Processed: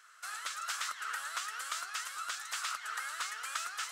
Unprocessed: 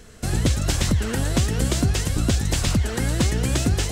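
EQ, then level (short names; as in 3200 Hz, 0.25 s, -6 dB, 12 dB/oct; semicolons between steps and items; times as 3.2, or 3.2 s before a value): ladder high-pass 1200 Hz, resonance 75%; 0.0 dB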